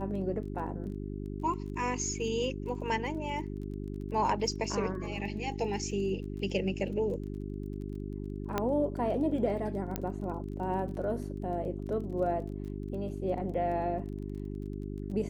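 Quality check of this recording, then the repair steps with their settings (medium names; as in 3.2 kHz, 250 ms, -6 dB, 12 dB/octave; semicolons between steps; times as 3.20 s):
crackle 21 per s -42 dBFS
hum 50 Hz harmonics 8 -38 dBFS
8.58 s: pop -15 dBFS
9.96 s: pop -17 dBFS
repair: de-click; de-hum 50 Hz, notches 8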